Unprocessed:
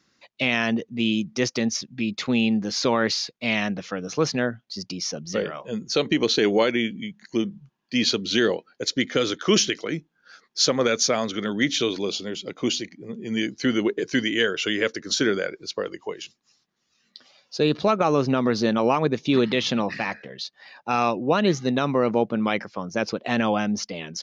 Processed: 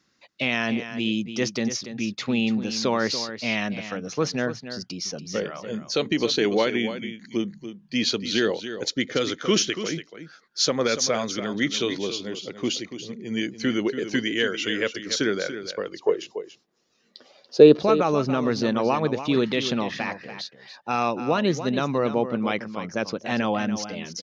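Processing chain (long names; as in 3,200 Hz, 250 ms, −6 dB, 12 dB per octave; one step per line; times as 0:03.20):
0:16.00–0:17.83: parametric band 450 Hz +13.5 dB 1.7 octaves
on a send: single-tap delay 286 ms −11 dB
on the sum: level −2 dB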